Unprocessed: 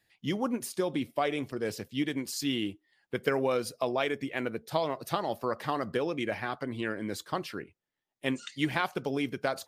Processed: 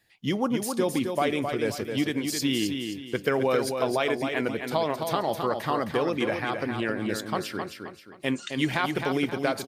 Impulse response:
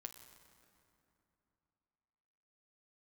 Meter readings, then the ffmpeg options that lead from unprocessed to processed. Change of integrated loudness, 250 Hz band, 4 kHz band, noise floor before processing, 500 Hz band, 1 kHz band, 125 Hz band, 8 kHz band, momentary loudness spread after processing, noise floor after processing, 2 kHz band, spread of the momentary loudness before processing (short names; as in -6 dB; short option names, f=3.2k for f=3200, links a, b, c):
+5.0 dB, +5.0 dB, +5.0 dB, under -85 dBFS, +5.0 dB, +4.5 dB, +5.0 dB, +5.5 dB, 5 LU, -47 dBFS, +4.5 dB, 6 LU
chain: -filter_complex "[0:a]asplit=2[a][b];[b]alimiter=limit=-21.5dB:level=0:latency=1,volume=-3dB[c];[a][c]amix=inputs=2:normalize=0,aecho=1:1:264|528|792|1056:0.501|0.18|0.065|0.0234"